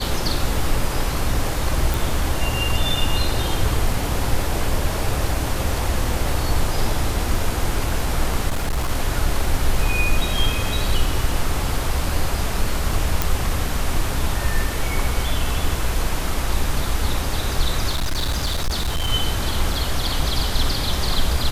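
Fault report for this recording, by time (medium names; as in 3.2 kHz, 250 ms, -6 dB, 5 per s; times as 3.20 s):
1.94 s: pop
8.49–8.91 s: clipped -17.5 dBFS
13.22 s: pop
17.90–19.10 s: clipped -17.5 dBFS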